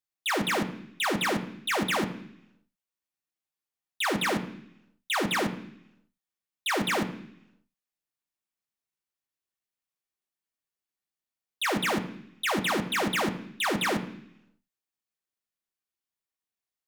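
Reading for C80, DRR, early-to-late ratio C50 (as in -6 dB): 14.5 dB, 3.0 dB, 12.0 dB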